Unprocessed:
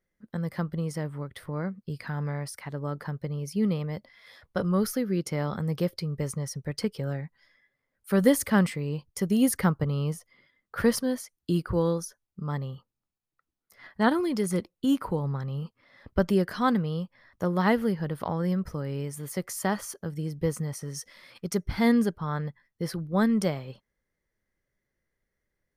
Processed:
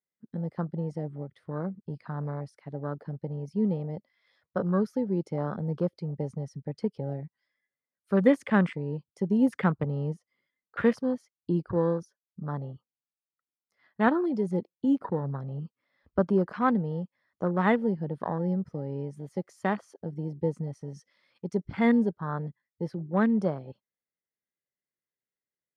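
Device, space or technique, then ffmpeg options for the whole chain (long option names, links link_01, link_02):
over-cleaned archive recording: -af "highpass=140,lowpass=6200,afwtdn=0.0178"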